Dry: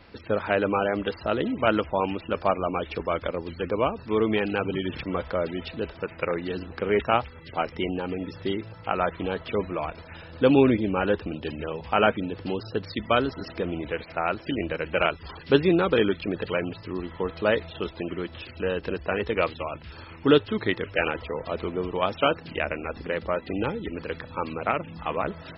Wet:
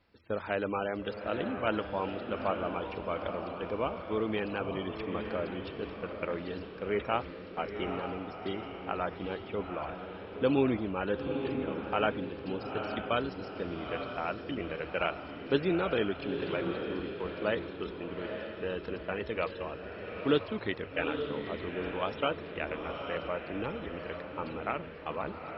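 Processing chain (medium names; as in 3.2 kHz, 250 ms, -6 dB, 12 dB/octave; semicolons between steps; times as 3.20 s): gate -35 dBFS, range -10 dB; on a send: echo that smears into a reverb 878 ms, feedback 45%, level -6 dB; on the sum: trim -8.5 dB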